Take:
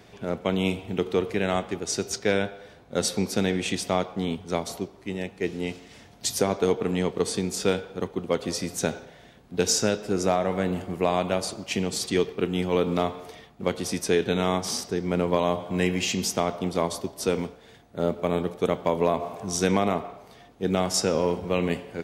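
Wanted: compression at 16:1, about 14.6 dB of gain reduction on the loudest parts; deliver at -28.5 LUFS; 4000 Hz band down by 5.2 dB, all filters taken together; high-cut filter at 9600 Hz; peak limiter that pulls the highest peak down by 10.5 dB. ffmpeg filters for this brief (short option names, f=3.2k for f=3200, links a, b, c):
-af "lowpass=9.6k,equalizer=f=4k:t=o:g=-7,acompressor=threshold=-32dB:ratio=16,volume=12.5dB,alimiter=limit=-17dB:level=0:latency=1"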